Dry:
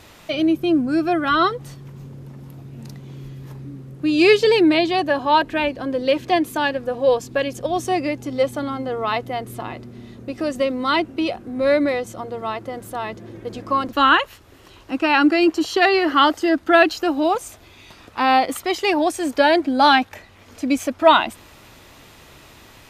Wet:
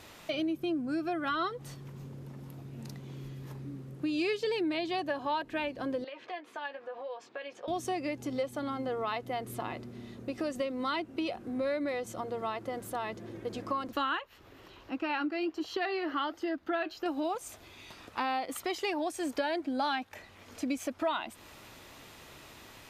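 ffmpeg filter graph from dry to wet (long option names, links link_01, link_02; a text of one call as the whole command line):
ffmpeg -i in.wav -filter_complex "[0:a]asettb=1/sr,asplit=3[link_01][link_02][link_03];[link_01]atrim=end=6.044[link_04];[link_02]atrim=start=6.04:end=7.68,asetpts=PTS-STARTPTS,afade=type=in:duration=0.004:curve=qsin,afade=type=out:start_time=1.636:duration=0.004:curve=qsin,acompressor=threshold=-26dB:ratio=16:attack=3.2:release=140:knee=1:detection=peak,highpass=680,lowpass=2700,asplit=2[link_05][link_06];[link_06]adelay=14,volume=-8dB[link_07];[link_05][link_07]amix=inputs=2:normalize=0,atrim=end_sample=72324[link_08];[link_03]atrim=start=7.676[link_09];[link_04][link_08]acrossfade=duration=0.004:curve1=hsin:curve2=qsin[link_10];[link_10][link_09]acrossfade=duration=0.004:curve1=qsin:curve2=hsin,asettb=1/sr,asplit=3[link_11][link_12][link_13];[link_11]atrim=end=14.194[link_14];[link_12]atrim=start=14.19:end=17.06,asetpts=PTS-STARTPTS,afade=type=in:duration=0.004:curve=qsin,afade=type=out:start_time=2.866:duration=0.004:curve=qsin,equalizer=frequency=9000:width=0.93:gain=-11.5,acompressor=mode=upward:threshold=-35dB:ratio=2.5:attack=3.2:release=140:knee=2.83:detection=peak,flanger=delay=2.7:depth=4.6:regen=-74:speed=1.3:shape=triangular[link_15];[link_13]atrim=start=17.056[link_16];[link_14][link_15]acrossfade=duration=0.004:curve1=hsin:curve2=qsin[link_17];[link_17][link_16]acrossfade=duration=0.004:curve1=qsin:curve2=hsin,lowshelf=frequency=120:gain=-6,acompressor=threshold=-26dB:ratio=4,volume=-5dB" out.wav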